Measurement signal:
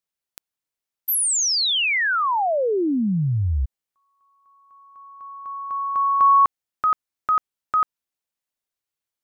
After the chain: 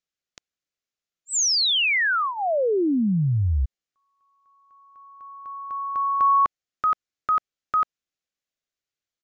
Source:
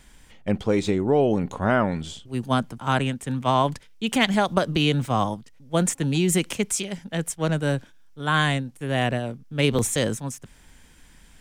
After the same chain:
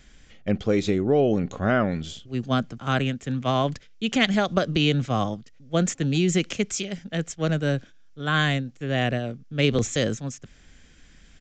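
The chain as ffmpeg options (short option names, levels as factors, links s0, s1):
-af "equalizer=f=930:w=5.1:g=-13.5,aresample=16000,aresample=44100"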